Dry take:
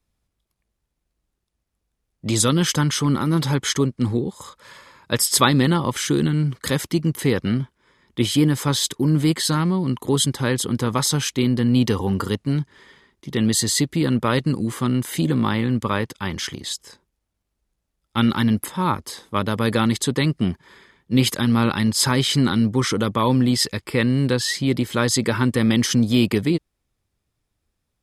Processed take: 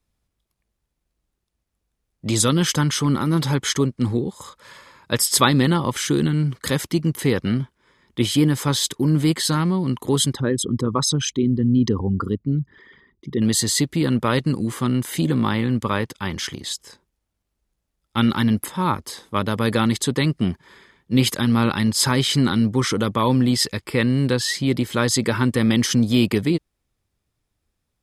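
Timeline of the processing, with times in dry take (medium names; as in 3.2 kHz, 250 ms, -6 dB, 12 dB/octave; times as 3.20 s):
10.33–13.42 s: resonances exaggerated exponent 2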